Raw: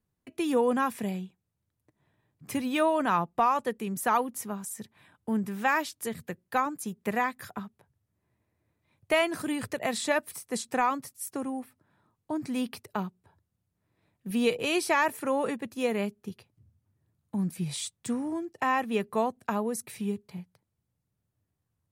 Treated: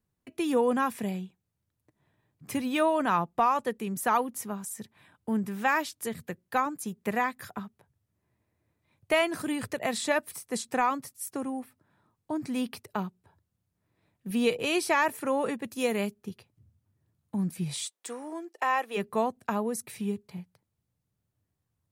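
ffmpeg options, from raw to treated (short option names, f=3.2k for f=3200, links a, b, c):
-filter_complex "[0:a]asettb=1/sr,asplit=3[a][b][c];[a]atrim=end=15.644[d];[b]atrim=start=15.64:end=16.14,asetpts=PTS-STARTPTS,afade=t=in:d=0.004:c=qsin,afade=t=out:st=0.496:d=0.004:c=qsin,highshelf=f=4.2k:g=7.5[e];[c]atrim=start=16.136[f];[d][e]acrossfade=d=0.004:c1=hsin:c2=qsin[g];[g][f]acrossfade=d=0.004:c1=qsin:c2=hsin,asplit=3[h][i][j];[h]afade=t=out:st=17.84:d=0.02[k];[i]highpass=f=380:w=0.5412,highpass=f=380:w=1.3066,afade=t=in:st=17.84:d=0.02,afade=t=out:st=18.96:d=0.02[l];[j]afade=t=in:st=18.96:d=0.02[m];[k][l][m]amix=inputs=3:normalize=0"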